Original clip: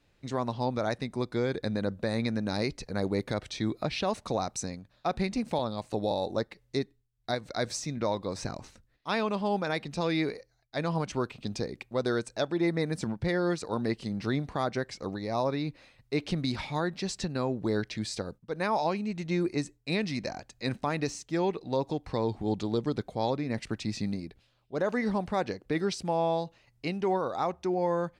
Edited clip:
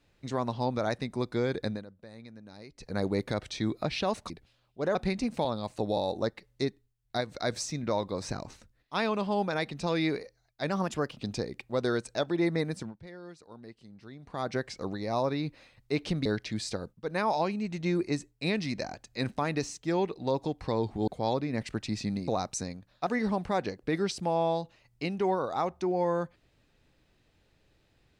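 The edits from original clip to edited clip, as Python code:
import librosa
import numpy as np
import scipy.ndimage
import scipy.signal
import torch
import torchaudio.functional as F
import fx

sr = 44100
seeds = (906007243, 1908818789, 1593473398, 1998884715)

y = fx.edit(x, sr, fx.fade_down_up(start_s=1.66, length_s=1.27, db=-18.5, fade_s=0.19),
    fx.swap(start_s=4.3, length_s=0.79, other_s=24.24, other_length_s=0.65),
    fx.speed_span(start_s=10.84, length_s=0.54, speed=1.16),
    fx.fade_down_up(start_s=12.83, length_s=1.95, db=-18.0, fade_s=0.38),
    fx.cut(start_s=16.47, length_s=1.24),
    fx.cut(start_s=22.53, length_s=0.51), tone=tone)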